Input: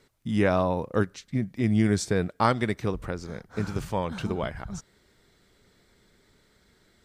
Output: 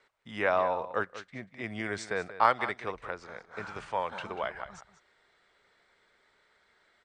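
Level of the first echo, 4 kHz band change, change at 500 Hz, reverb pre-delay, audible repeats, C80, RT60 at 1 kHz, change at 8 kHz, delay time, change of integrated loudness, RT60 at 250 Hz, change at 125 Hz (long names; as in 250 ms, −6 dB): −14.0 dB, −5.0 dB, −4.5 dB, no reverb audible, 1, no reverb audible, no reverb audible, −11.0 dB, 189 ms, −5.0 dB, no reverb audible, −19.0 dB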